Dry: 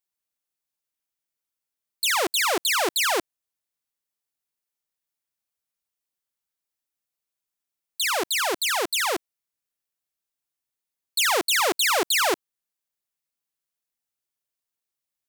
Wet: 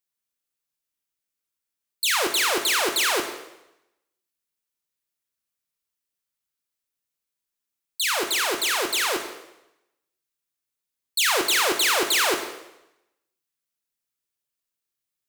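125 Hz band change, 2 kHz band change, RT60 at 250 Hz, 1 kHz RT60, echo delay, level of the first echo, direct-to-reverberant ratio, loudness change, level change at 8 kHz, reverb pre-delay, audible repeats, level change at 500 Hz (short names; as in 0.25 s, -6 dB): n/a, +1.0 dB, 0.90 s, 0.90 s, none, none, 5.0 dB, +1.0 dB, +1.5 dB, 7 ms, none, -0.5 dB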